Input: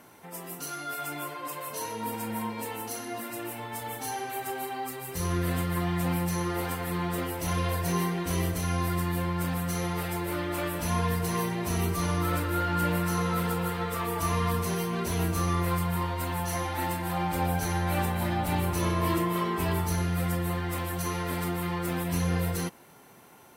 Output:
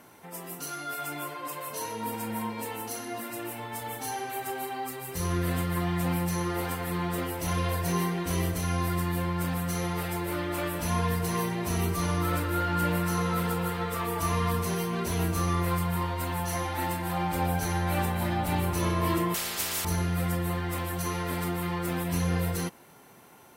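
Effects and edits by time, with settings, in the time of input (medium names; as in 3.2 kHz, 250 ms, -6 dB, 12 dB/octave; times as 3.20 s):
19.34–19.85 s: spectrum-flattening compressor 10:1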